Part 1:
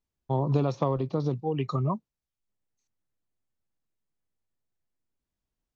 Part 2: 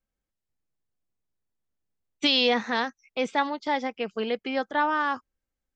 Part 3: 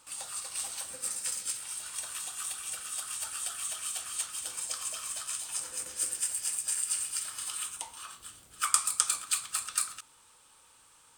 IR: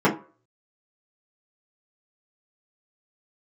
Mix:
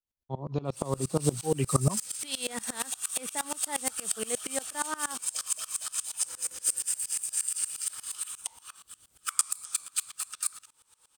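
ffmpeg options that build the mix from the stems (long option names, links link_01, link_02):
-filter_complex "[0:a]volume=-3.5dB[link_01];[1:a]alimiter=limit=-16dB:level=0:latency=1,volume=-14.5dB[link_02];[2:a]adelay=650,volume=-7dB[link_03];[link_01][link_02][link_03]amix=inputs=3:normalize=0,highshelf=frequency=4800:gain=6.5,dynaudnorm=framelen=410:gausssize=5:maxgain=11.5dB,aeval=exprs='val(0)*pow(10,-23*if(lt(mod(-8.5*n/s,1),2*abs(-8.5)/1000),1-mod(-8.5*n/s,1)/(2*abs(-8.5)/1000),(mod(-8.5*n/s,1)-2*abs(-8.5)/1000)/(1-2*abs(-8.5)/1000))/20)':channel_layout=same"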